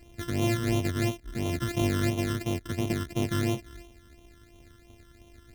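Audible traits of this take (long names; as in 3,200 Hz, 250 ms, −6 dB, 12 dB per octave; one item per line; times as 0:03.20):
a buzz of ramps at a fixed pitch in blocks of 128 samples
phaser sweep stages 12, 2.9 Hz, lowest notch 750–1,600 Hz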